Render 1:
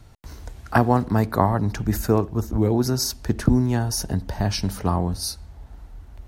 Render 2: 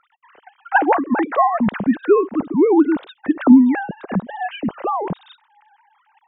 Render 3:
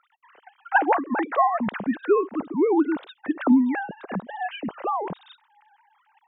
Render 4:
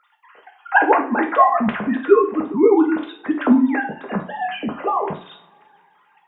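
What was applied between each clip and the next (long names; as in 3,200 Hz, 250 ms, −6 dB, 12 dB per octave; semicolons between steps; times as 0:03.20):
three sine waves on the formant tracks; level +4.5 dB
low-shelf EQ 230 Hz −10.5 dB; level −3.5 dB
coupled-rooms reverb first 0.35 s, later 2.1 s, from −27 dB, DRR 0.5 dB; level +3.5 dB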